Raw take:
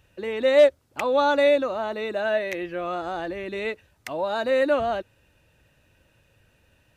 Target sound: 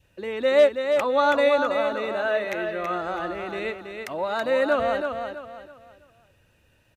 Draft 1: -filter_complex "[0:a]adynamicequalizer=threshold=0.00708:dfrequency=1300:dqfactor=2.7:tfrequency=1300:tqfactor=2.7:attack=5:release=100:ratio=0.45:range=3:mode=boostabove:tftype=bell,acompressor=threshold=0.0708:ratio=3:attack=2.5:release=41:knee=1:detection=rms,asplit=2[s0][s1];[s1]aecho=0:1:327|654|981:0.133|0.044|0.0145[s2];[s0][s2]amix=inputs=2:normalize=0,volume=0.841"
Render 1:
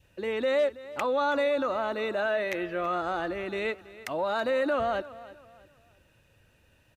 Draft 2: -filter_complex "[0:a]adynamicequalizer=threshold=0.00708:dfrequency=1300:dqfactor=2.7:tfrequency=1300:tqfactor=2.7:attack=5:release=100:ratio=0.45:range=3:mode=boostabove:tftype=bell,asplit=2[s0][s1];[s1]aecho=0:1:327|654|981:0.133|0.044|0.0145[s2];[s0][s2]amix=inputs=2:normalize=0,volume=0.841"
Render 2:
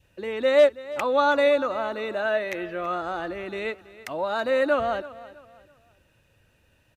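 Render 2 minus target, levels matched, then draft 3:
echo-to-direct -11.5 dB
-filter_complex "[0:a]adynamicequalizer=threshold=0.00708:dfrequency=1300:dqfactor=2.7:tfrequency=1300:tqfactor=2.7:attack=5:release=100:ratio=0.45:range=3:mode=boostabove:tftype=bell,asplit=2[s0][s1];[s1]aecho=0:1:327|654|981|1308:0.501|0.165|0.0546|0.018[s2];[s0][s2]amix=inputs=2:normalize=0,volume=0.841"

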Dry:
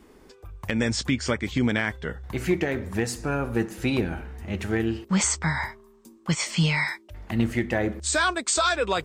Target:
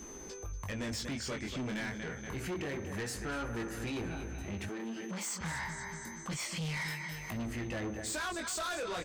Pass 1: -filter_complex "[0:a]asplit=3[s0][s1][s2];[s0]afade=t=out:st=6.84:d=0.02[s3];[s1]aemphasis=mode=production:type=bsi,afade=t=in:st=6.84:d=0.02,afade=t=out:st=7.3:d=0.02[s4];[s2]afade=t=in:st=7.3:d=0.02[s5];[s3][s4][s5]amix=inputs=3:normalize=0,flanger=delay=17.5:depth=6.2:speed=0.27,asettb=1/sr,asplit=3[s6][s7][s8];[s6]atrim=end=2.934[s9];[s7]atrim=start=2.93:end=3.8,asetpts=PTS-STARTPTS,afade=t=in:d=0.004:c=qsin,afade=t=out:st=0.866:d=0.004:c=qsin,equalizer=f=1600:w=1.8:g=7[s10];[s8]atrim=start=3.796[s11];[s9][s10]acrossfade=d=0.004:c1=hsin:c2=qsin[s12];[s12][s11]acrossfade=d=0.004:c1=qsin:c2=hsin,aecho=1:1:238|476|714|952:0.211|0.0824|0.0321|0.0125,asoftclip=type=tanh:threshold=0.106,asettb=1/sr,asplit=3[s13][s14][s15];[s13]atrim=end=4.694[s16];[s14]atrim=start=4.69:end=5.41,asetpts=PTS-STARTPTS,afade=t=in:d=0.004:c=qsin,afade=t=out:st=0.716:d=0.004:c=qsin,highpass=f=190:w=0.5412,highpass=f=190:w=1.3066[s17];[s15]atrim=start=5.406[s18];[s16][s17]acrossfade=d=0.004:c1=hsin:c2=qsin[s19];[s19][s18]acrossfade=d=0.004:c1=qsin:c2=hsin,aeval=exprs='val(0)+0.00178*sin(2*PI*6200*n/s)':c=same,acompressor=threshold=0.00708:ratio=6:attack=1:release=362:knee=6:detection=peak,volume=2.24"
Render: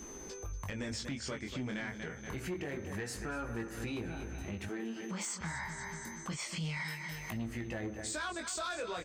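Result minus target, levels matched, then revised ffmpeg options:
saturation: distortion -9 dB
-filter_complex "[0:a]asplit=3[s0][s1][s2];[s0]afade=t=out:st=6.84:d=0.02[s3];[s1]aemphasis=mode=production:type=bsi,afade=t=in:st=6.84:d=0.02,afade=t=out:st=7.3:d=0.02[s4];[s2]afade=t=in:st=7.3:d=0.02[s5];[s3][s4][s5]amix=inputs=3:normalize=0,flanger=delay=17.5:depth=6.2:speed=0.27,asettb=1/sr,asplit=3[s6][s7][s8];[s6]atrim=end=2.934[s9];[s7]atrim=start=2.93:end=3.8,asetpts=PTS-STARTPTS,afade=t=in:d=0.004:c=qsin,afade=t=out:st=0.866:d=0.004:c=qsin,equalizer=f=1600:w=1.8:g=7[s10];[s8]atrim=start=3.796[s11];[s9][s10]acrossfade=d=0.004:c1=hsin:c2=qsin[s12];[s12][s11]acrossfade=d=0.004:c1=qsin:c2=hsin,aecho=1:1:238|476|714|952:0.211|0.0824|0.0321|0.0125,asoftclip=type=tanh:threshold=0.0335,asettb=1/sr,asplit=3[s13][s14][s15];[s13]atrim=end=4.694[s16];[s14]atrim=start=4.69:end=5.41,asetpts=PTS-STARTPTS,afade=t=in:d=0.004:c=qsin,afade=t=out:st=0.716:d=0.004:c=qsin,highpass=f=190:w=0.5412,highpass=f=190:w=1.3066[s17];[s15]atrim=start=5.406[s18];[s16][s17]acrossfade=d=0.004:c1=hsin:c2=qsin[s19];[s19][s18]acrossfade=d=0.004:c1=qsin:c2=hsin,aeval=exprs='val(0)+0.00178*sin(2*PI*6200*n/s)':c=same,acompressor=threshold=0.00708:ratio=6:attack=1:release=362:knee=6:detection=peak,volume=2.24"

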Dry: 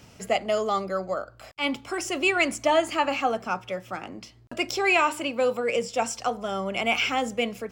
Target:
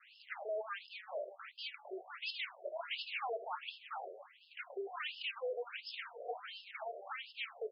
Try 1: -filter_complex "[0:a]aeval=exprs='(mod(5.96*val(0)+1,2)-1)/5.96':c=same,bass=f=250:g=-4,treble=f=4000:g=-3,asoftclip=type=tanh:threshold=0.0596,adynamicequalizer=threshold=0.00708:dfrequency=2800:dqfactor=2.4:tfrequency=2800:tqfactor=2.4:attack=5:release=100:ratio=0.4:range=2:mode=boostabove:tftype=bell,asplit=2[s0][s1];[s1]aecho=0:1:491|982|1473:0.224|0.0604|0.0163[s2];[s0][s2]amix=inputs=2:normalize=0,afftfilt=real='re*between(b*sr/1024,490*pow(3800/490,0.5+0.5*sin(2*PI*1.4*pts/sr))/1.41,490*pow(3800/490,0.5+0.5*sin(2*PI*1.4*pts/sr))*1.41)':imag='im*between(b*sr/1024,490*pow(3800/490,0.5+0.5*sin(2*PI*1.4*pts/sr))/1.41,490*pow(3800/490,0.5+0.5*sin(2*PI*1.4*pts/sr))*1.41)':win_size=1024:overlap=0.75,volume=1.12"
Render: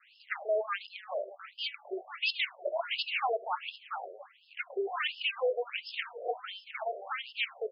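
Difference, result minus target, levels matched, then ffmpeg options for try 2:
saturation: distortion -8 dB
-filter_complex "[0:a]aeval=exprs='(mod(5.96*val(0)+1,2)-1)/5.96':c=same,bass=f=250:g=-4,treble=f=4000:g=-3,asoftclip=type=tanh:threshold=0.0158,adynamicequalizer=threshold=0.00708:dfrequency=2800:dqfactor=2.4:tfrequency=2800:tqfactor=2.4:attack=5:release=100:ratio=0.4:range=2:mode=boostabove:tftype=bell,asplit=2[s0][s1];[s1]aecho=0:1:491|982|1473:0.224|0.0604|0.0163[s2];[s0][s2]amix=inputs=2:normalize=0,afftfilt=real='re*between(b*sr/1024,490*pow(3800/490,0.5+0.5*sin(2*PI*1.4*pts/sr))/1.41,490*pow(3800/490,0.5+0.5*sin(2*PI*1.4*pts/sr))*1.41)':imag='im*between(b*sr/1024,490*pow(3800/490,0.5+0.5*sin(2*PI*1.4*pts/sr))/1.41,490*pow(3800/490,0.5+0.5*sin(2*PI*1.4*pts/sr))*1.41)':win_size=1024:overlap=0.75,volume=1.12"

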